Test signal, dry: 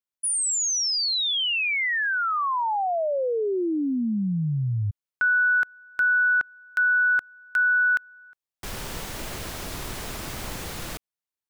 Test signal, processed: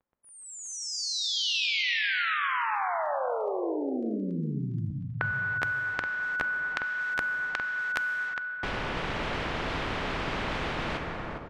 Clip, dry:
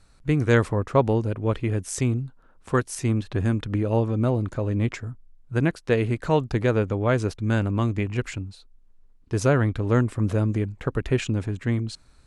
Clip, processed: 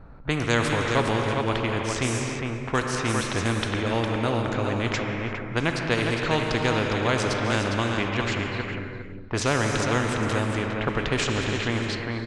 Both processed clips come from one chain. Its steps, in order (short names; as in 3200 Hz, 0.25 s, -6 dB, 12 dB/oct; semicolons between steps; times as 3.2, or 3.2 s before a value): crackle 10/s -54 dBFS; high shelf 6400 Hz -11.5 dB; on a send: feedback echo 0.407 s, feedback 15%, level -7.5 dB; on the sum: non-linear reverb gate 0.38 s flat, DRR 5.5 dB; low-pass opened by the level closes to 1100 Hz, open at -16.5 dBFS; spectral compressor 2:1